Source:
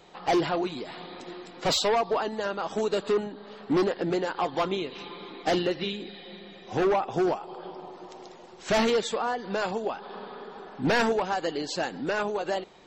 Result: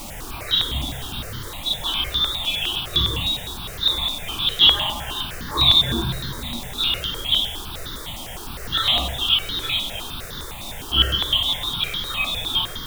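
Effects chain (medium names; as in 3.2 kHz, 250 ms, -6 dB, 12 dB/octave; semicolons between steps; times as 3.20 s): random holes in the spectrogram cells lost 72%; peaking EQ 870 Hz +3 dB 1.2 oct; frequency inversion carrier 4 kHz; 4.38–6.48 s: treble shelf 2.1 kHz +10.5 dB; reverberation RT60 1.0 s, pre-delay 3 ms, DRR -15 dB; chorus voices 6, 0.23 Hz, delay 29 ms, depth 1.1 ms; added noise pink -28 dBFS; stepped phaser 9.8 Hz 440–2500 Hz; trim -3.5 dB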